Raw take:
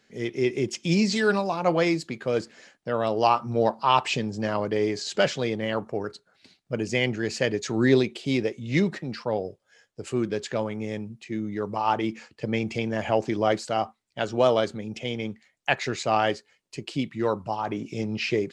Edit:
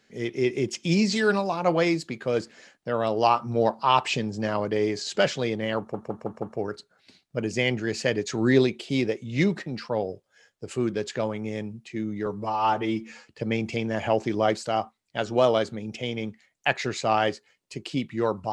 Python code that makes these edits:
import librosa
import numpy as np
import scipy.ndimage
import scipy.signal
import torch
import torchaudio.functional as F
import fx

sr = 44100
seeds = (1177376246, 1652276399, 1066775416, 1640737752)

y = fx.edit(x, sr, fx.stutter(start_s=5.78, slice_s=0.16, count=5),
    fx.stretch_span(start_s=11.62, length_s=0.68, factor=1.5), tone=tone)